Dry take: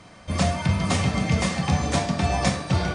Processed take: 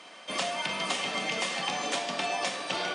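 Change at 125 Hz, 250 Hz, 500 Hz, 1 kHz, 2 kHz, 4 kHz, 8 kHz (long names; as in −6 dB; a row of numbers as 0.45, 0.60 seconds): −27.0, −16.0, −5.5, −4.5, −1.5, +1.0, −4.0 decibels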